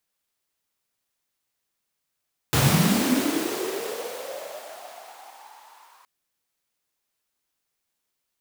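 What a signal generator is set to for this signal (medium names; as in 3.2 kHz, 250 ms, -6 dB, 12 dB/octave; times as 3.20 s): swept filtered noise pink, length 3.52 s highpass, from 100 Hz, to 980 Hz, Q 7.5, linear, gain ramp -37 dB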